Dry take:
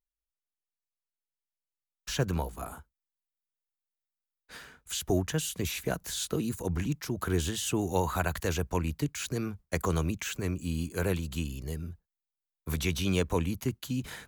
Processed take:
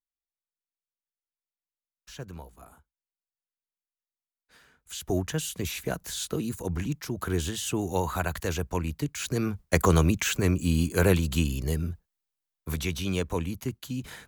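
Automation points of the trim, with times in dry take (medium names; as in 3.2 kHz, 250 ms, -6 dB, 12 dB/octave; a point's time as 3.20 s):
4.57 s -11.5 dB
5.18 s +0.5 dB
9.09 s +0.5 dB
9.61 s +8 dB
11.85 s +8 dB
12.95 s -1 dB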